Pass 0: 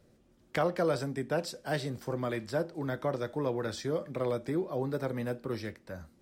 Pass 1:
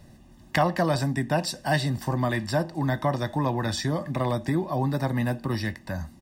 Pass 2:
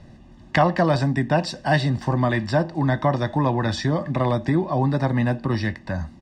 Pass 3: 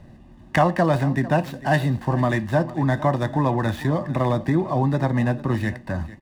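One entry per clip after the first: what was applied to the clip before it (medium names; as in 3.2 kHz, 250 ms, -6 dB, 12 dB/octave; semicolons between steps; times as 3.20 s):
comb 1.1 ms, depth 78%; in parallel at 0 dB: compression, threshold -40 dBFS, peak gain reduction 16 dB; on the sum: trim +5 dB
distance through air 110 m; trim +5 dB
median filter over 9 samples; delay 449 ms -17 dB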